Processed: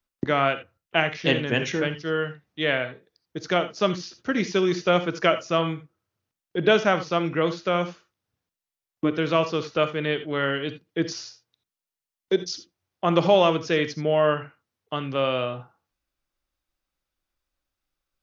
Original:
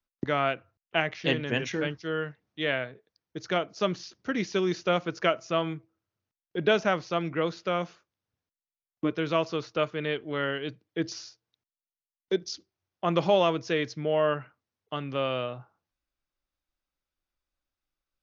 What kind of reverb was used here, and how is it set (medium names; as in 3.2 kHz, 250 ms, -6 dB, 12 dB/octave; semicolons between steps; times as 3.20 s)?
gated-style reverb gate 100 ms rising, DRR 11 dB; trim +4.5 dB